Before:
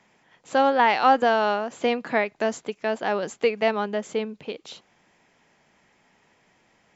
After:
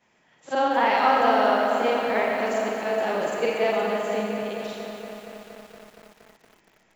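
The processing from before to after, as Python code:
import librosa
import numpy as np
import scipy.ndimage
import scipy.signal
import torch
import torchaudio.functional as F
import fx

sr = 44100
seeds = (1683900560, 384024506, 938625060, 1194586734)

y = fx.frame_reverse(x, sr, frame_ms=122.0)
y = fx.rev_freeverb(y, sr, rt60_s=1.8, hf_ratio=0.55, predelay_ms=50, drr_db=1.0)
y = fx.echo_crushed(y, sr, ms=234, feedback_pct=80, bits=8, wet_db=-9.0)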